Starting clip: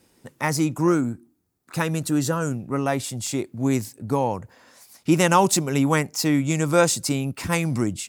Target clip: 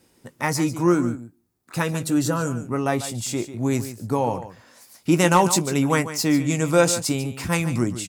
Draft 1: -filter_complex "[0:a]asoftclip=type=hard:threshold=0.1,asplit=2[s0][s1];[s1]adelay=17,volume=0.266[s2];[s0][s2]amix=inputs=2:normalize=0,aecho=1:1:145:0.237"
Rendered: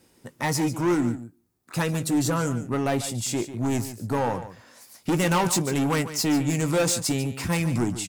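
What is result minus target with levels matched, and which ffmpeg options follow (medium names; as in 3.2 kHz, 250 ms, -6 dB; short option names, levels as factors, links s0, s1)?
hard clipper: distortion +24 dB
-filter_complex "[0:a]asoftclip=type=hard:threshold=0.398,asplit=2[s0][s1];[s1]adelay=17,volume=0.266[s2];[s0][s2]amix=inputs=2:normalize=0,aecho=1:1:145:0.237"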